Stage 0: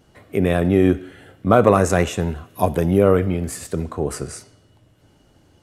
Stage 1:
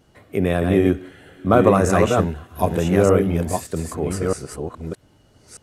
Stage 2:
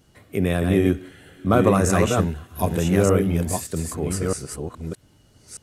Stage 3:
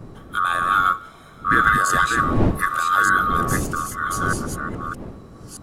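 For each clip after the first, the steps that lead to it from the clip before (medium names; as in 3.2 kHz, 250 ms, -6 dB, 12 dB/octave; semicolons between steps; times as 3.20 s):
chunks repeated in reverse 619 ms, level -4 dB; trim -1.5 dB
FFT filter 160 Hz 0 dB, 670 Hz -5 dB, 9.3 kHz +4 dB
split-band scrambler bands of 1 kHz; wind noise 280 Hz -28 dBFS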